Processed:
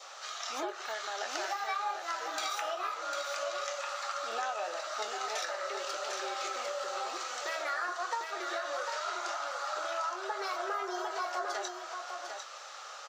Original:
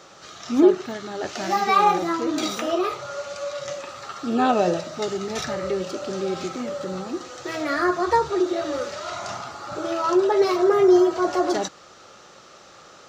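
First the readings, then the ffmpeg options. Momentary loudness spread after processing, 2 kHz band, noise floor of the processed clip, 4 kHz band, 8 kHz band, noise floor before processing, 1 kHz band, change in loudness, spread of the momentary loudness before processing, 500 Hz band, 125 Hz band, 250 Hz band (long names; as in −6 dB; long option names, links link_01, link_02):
5 LU, −5.0 dB, −46 dBFS, −5.0 dB, can't be measured, −48 dBFS, −9.5 dB, −12.5 dB, 15 LU, −16.5 dB, below −40 dB, −28.0 dB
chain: -filter_complex "[0:a]highpass=frequency=640:width=0.5412,highpass=frequency=640:width=1.3066,adynamicequalizer=threshold=0.00891:dfrequency=1500:dqfactor=3.4:tfrequency=1500:tqfactor=3.4:attack=5:release=100:ratio=0.375:range=3:mode=boostabove:tftype=bell,acompressor=threshold=-35dB:ratio=6,asplit=2[link_01][link_02];[link_02]adelay=23,volume=-11dB[link_03];[link_01][link_03]amix=inputs=2:normalize=0,asplit=2[link_04][link_05];[link_05]aecho=0:1:750:0.501[link_06];[link_04][link_06]amix=inputs=2:normalize=0,volume=1dB"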